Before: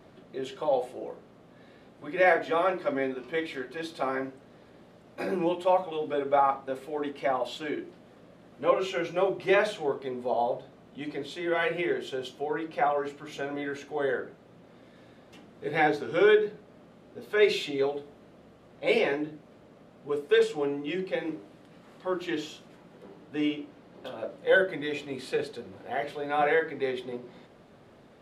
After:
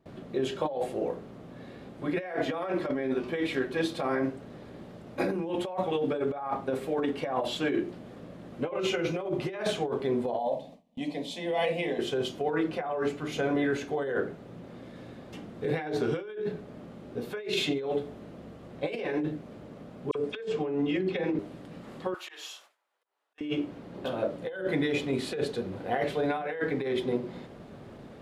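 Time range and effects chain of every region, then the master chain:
0:10.39–0:11.99: low-shelf EQ 190 Hz −7.5 dB + phaser with its sweep stopped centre 380 Hz, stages 6
0:20.11–0:21.39: high-frequency loss of the air 68 metres + all-pass dispersion lows, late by 43 ms, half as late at 2,300 Hz
0:22.14–0:23.41: high-shelf EQ 7,800 Hz +10 dB + volume swells 169 ms + four-pole ladder high-pass 710 Hz, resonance 20%
whole clip: noise gate with hold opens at −46 dBFS; low-shelf EQ 390 Hz +7 dB; compressor whose output falls as the input rises −30 dBFS, ratio −1

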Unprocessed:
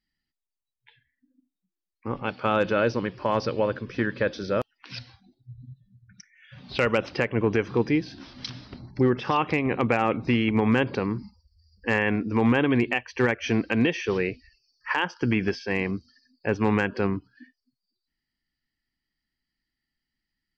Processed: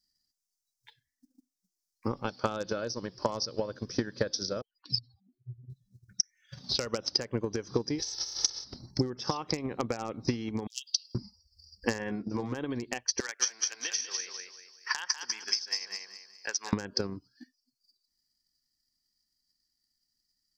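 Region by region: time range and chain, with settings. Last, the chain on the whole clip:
0:04.61–0:05.70: expanding power law on the bin magnitudes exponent 2.8 + flat-topped bell 1,900 Hz −8 dB 1.1 octaves
0:07.98–0:08.63: ceiling on every frequency bin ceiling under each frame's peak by 29 dB + comb filter 2.3 ms, depth 93%
0:10.67–0:11.15: Chebyshev high-pass filter 2,800 Hz, order 8 + high-shelf EQ 3,800 Hz +4.5 dB + comb filter 3.7 ms, depth 31%
0:11.98–0:12.55: high-frequency loss of the air 120 metres + double-tracking delay 15 ms −4 dB
0:13.20–0:16.73: high-pass filter 1,400 Hz + repeating echo 196 ms, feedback 36%, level −4 dB
whole clip: high shelf with overshoot 3,800 Hz +13.5 dB, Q 3; downward compressor, threshold −26 dBFS; transient designer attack +10 dB, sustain −4 dB; level −6.5 dB

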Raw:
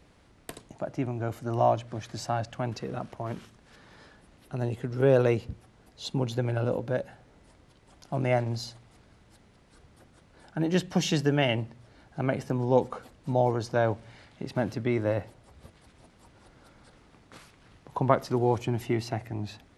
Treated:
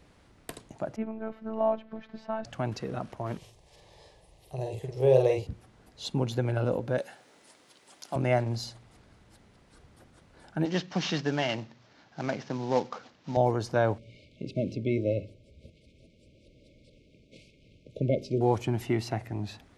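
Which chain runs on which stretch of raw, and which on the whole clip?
0:00.96–0:02.45: phases set to zero 221 Hz + high-frequency loss of the air 390 metres
0:03.37–0:05.47: phaser with its sweep stopped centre 590 Hz, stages 4 + double-tracking delay 46 ms −3.5 dB
0:06.98–0:08.16: high-pass filter 280 Hz + high-shelf EQ 2,400 Hz +10 dB
0:10.65–0:13.37: variable-slope delta modulation 32 kbit/s + high-pass filter 180 Hz + parametric band 410 Hz −4.5 dB 1.3 octaves
0:13.98–0:18.41: linear-phase brick-wall band-stop 650–2,100 Hz + high-frequency loss of the air 94 metres + mains-hum notches 50/100/150/200/250/300/350/400 Hz
whole clip: no processing

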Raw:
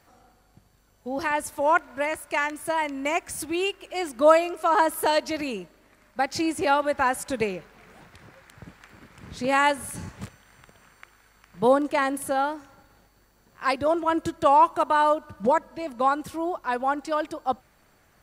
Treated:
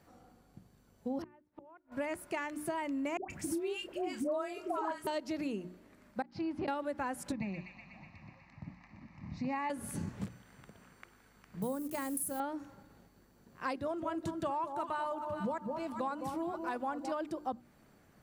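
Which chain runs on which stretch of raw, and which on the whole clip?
0:01.22–0:01.92: gate with flip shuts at −24 dBFS, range −31 dB + high-frequency loss of the air 360 metres
0:03.17–0:05.07: double-tracking delay 30 ms −10.5 dB + all-pass dispersion highs, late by 130 ms, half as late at 790 Hz
0:06.22–0:06.68: drawn EQ curve 230 Hz 0 dB, 460 Hz −9 dB, 890 Hz +3 dB, 2,100 Hz −5 dB, 4,800 Hz −6 dB, 7,500 Hz −28 dB + volume swells 299 ms
0:07.32–0:09.70: Bessel low-pass filter 3,100 Hz + phaser with its sweep stopped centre 2,200 Hz, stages 8 + delay with a high-pass on its return 123 ms, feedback 76%, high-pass 1,600 Hz, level −7 dB
0:11.62–0:12.40: hold until the input has moved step −41 dBFS + drawn EQ curve 110 Hz 0 dB, 370 Hz −9 dB, 3,600 Hz −7 dB, 11,000 Hz +14 dB
0:13.78–0:17.12: parametric band 340 Hz −5.5 dB 2.1 octaves + delay that swaps between a low-pass and a high-pass 210 ms, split 980 Hz, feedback 54%, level −7.5 dB
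whole clip: parametric band 210 Hz +11.5 dB 2.3 octaves; mains-hum notches 60/120/180/240/300/360 Hz; downward compressor 6 to 1, threshold −26 dBFS; level −7.5 dB

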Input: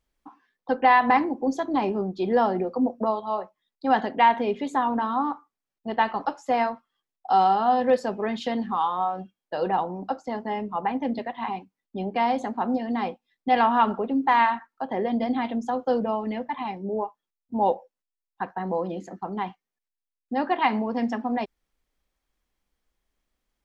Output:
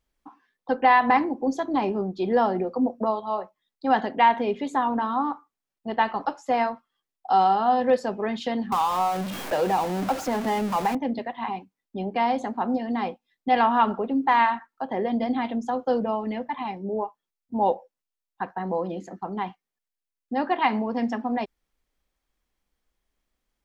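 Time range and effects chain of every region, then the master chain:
0:08.72–0:10.95: converter with a step at zero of −29.5 dBFS + multiband upward and downward compressor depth 70%
whole clip: no processing

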